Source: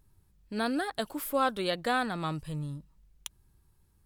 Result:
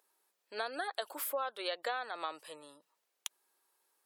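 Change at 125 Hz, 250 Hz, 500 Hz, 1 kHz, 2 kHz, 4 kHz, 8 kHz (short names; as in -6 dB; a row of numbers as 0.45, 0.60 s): under -35 dB, -20.0 dB, -6.5 dB, -7.0 dB, -6.0 dB, -4.5 dB, -1.5 dB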